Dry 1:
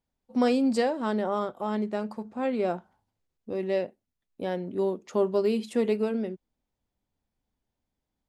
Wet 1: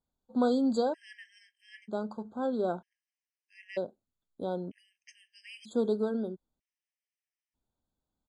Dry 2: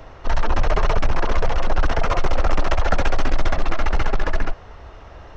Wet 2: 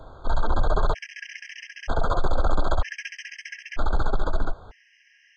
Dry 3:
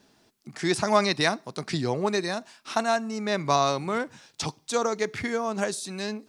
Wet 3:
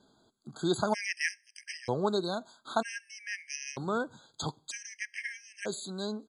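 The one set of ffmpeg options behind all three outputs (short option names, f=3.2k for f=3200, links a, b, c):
-af "aresample=22050,aresample=44100,afftfilt=real='re*gt(sin(2*PI*0.53*pts/sr)*(1-2*mod(floor(b*sr/1024/1600),2)),0)':imag='im*gt(sin(2*PI*0.53*pts/sr)*(1-2*mod(floor(b*sr/1024/1600),2)),0)':win_size=1024:overlap=0.75,volume=-3dB"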